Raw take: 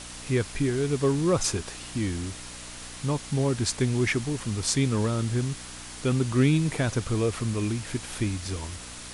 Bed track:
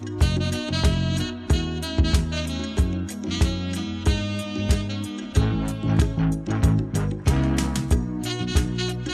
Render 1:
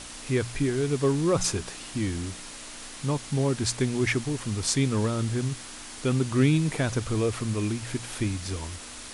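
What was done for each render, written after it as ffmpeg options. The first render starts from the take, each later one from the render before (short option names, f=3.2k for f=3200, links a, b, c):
-af "bandreject=f=60:t=h:w=4,bandreject=f=120:t=h:w=4,bandreject=f=180:t=h:w=4"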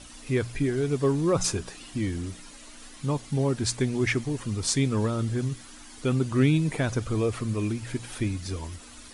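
-af "afftdn=nr=10:nf=-42"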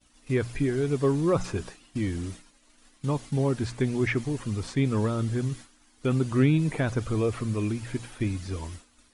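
-filter_complex "[0:a]acrossover=split=2800[a][b];[b]acompressor=threshold=-45dB:ratio=4:attack=1:release=60[c];[a][c]amix=inputs=2:normalize=0,agate=range=-33dB:threshold=-36dB:ratio=3:detection=peak"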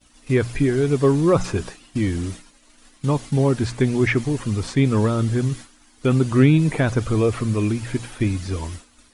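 -af "volume=7dB"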